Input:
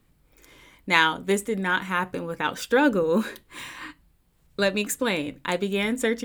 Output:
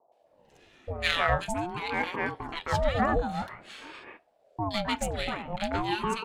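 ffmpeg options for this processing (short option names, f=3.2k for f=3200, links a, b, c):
-filter_complex "[0:a]acrossover=split=510|1800[a][b][c];[c]adelay=120[d];[b]adelay=260[e];[a][e][d]amix=inputs=3:normalize=0,adynamicsmooth=sensitivity=2.5:basefreq=5.8k,aeval=exprs='val(0)*sin(2*PI*470*n/s+470*0.45/0.48*sin(2*PI*0.48*n/s))':c=same"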